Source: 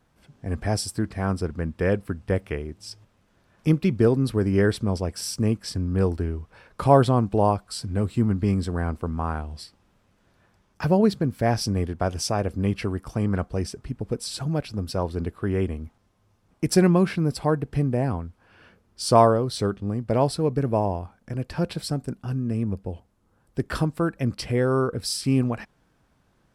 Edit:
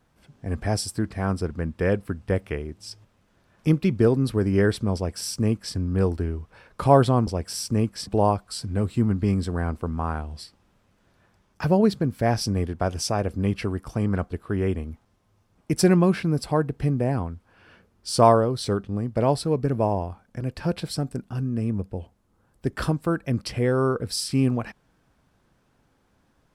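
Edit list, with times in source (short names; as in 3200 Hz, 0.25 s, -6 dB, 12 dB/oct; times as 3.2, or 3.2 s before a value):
4.95–5.75 copy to 7.27
13.52–15.25 cut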